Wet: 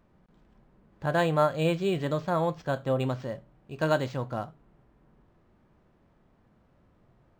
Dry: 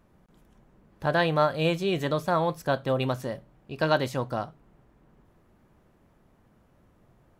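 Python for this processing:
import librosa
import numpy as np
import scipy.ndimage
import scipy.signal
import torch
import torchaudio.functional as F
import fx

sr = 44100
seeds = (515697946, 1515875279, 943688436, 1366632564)

y = fx.hpss(x, sr, part='percussive', gain_db=-5)
y = np.interp(np.arange(len(y)), np.arange(len(y))[::4], y[::4])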